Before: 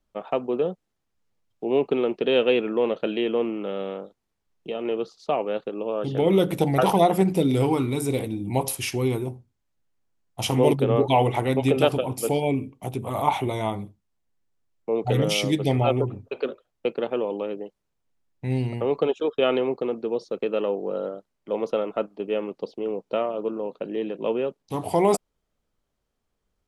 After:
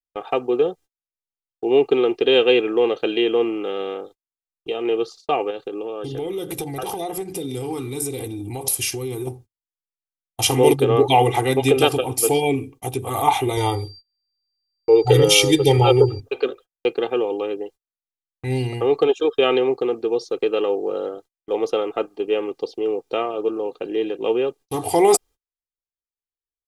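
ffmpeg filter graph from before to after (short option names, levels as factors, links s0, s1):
-filter_complex "[0:a]asettb=1/sr,asplit=3[s0][s1][s2];[s0]atrim=end=5.504[s3];[s1]atrim=start=5.5:end=9.27,asetpts=PTS-STARTPTS,afade=t=in:d=0.004:c=qsin,afade=t=out:st=3.766:d=0.004:c=qsin,equalizer=f=1500:w=0.41:g=-3.5,acompressor=threshold=0.0398:ratio=6:attack=3.2:release=140:knee=1:detection=peak[s4];[s2]atrim=start=9.266[s5];[s3][s4]acrossfade=d=0.004:c1=hsin:c2=qsin[s6];[s6][s5]acrossfade=d=0.004:c1=qsin:c2=hsin,asettb=1/sr,asplit=3[s7][s8][s9];[s7]atrim=end=13.574[s10];[s8]atrim=start=13.57:end=16.2,asetpts=PTS-STARTPTS,afade=t=in:d=0.004:c=qsin,afade=t=out:st=2.626:d=0.004:c=qsin,lowshelf=f=280:g=4,aeval=exprs='val(0)+0.00316*sin(2*PI*4700*n/s)':c=same,aecho=1:1:2.2:0.76,atrim=end_sample=115983[s11];[s9]atrim=start=16.196[s12];[s10][s11]acrossfade=d=0.004:c1=hsin:c2=qsin[s13];[s13][s12]acrossfade=d=0.004:c1=qsin:c2=hsin,agate=range=0.0224:threshold=0.00562:ratio=16:detection=peak,highshelf=f=3700:g=10,aecho=1:1:2.5:0.7,volume=1.26"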